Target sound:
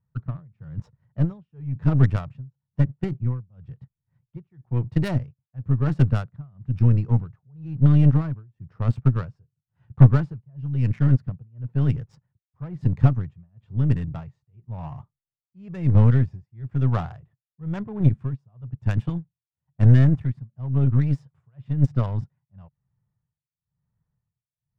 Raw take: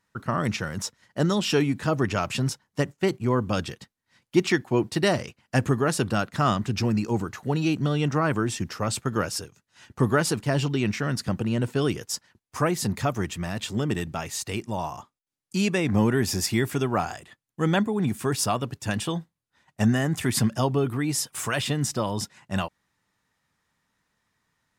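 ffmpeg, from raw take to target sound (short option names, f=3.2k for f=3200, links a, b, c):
-af "tremolo=f=1:d=0.98,lowshelf=f=190:t=q:w=3:g=11.5,adynamicsmooth=sensitivity=1.5:basefreq=880,aeval=exprs='1.19*(cos(1*acos(clip(val(0)/1.19,-1,1)))-cos(1*PI/2))+0.188*(cos(4*acos(clip(val(0)/1.19,-1,1)))-cos(4*PI/2))+0.075*(cos(6*acos(clip(val(0)/1.19,-1,1)))-cos(6*PI/2))+0.0422*(cos(7*acos(clip(val(0)/1.19,-1,1)))-cos(7*PI/2))+0.0668*(cos(8*acos(clip(val(0)/1.19,-1,1)))-cos(8*PI/2))':c=same,volume=-4dB"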